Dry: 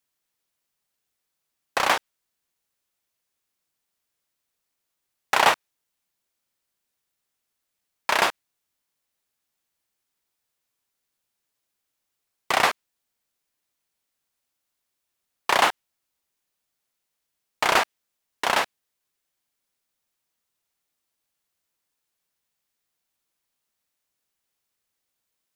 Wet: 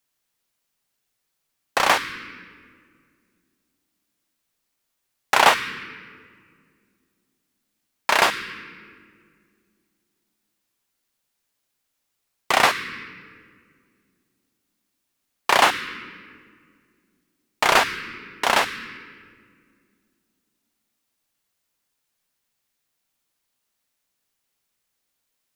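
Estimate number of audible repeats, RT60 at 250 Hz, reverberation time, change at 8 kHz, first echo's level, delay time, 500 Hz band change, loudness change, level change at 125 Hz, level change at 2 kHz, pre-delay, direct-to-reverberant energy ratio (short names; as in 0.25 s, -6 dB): none, 3.0 s, 2.2 s, +3.5 dB, none, none, +3.0 dB, +2.5 dB, +4.5 dB, +4.0 dB, 3 ms, 8.0 dB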